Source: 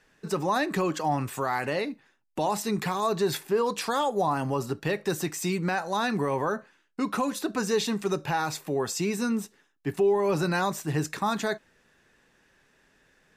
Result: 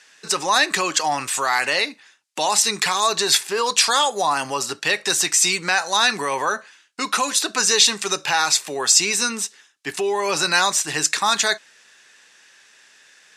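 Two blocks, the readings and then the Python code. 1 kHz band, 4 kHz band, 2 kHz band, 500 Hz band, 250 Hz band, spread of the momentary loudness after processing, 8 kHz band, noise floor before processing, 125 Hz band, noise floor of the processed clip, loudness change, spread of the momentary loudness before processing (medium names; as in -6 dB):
+7.0 dB, +18.0 dB, +12.0 dB, +1.0 dB, -4.0 dB, 9 LU, +19.0 dB, -66 dBFS, -8.5 dB, -54 dBFS, +9.0 dB, 6 LU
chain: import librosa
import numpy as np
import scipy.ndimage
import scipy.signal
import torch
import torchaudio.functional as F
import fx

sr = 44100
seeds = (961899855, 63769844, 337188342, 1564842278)

y = fx.weighting(x, sr, curve='ITU-R 468')
y = y * 10.0 ** (7.5 / 20.0)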